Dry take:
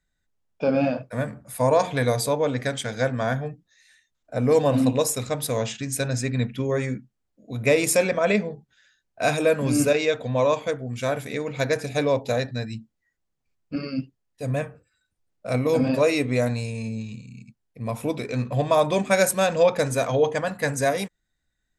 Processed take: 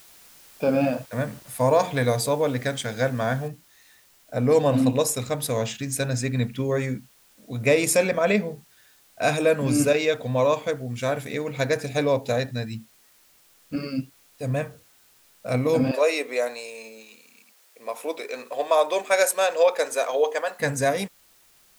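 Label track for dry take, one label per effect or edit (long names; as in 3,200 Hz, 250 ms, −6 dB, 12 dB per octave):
0.920000	1.700000	centre clipping without the shift under −47 dBFS
3.480000	3.480000	noise floor change −51 dB −58 dB
15.910000	20.600000	high-pass filter 400 Hz 24 dB per octave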